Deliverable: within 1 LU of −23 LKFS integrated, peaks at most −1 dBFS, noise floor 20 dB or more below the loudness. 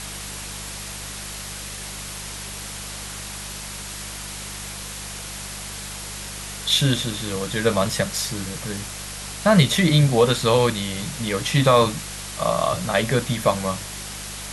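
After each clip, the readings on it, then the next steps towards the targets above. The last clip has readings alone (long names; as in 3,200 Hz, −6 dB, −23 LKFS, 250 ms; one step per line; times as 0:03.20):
mains hum 50 Hz; hum harmonics up to 200 Hz; level of the hum −36 dBFS; background noise floor −34 dBFS; target noise floor −44 dBFS; integrated loudness −23.5 LKFS; sample peak −2.5 dBFS; target loudness −23.0 LKFS
→ hum removal 50 Hz, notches 4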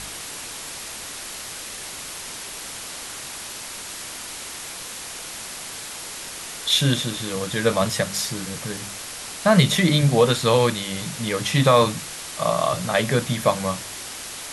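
mains hum none found; background noise floor −35 dBFS; target noise floor −44 dBFS
→ broadband denoise 9 dB, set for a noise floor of −35 dBFS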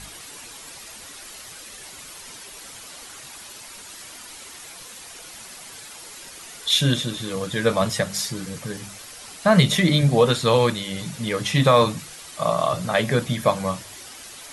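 background noise floor −41 dBFS; target noise floor −42 dBFS
→ broadband denoise 6 dB, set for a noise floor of −41 dBFS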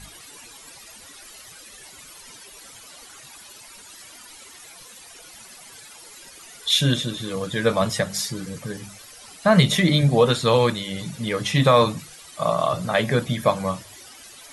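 background noise floor −45 dBFS; integrated loudness −21.5 LKFS; sample peak −4.0 dBFS; target loudness −23.0 LKFS
→ level −1.5 dB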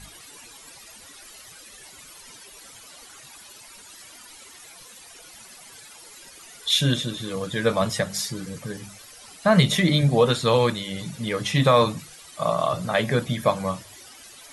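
integrated loudness −23.0 LKFS; sample peak −5.5 dBFS; background noise floor −47 dBFS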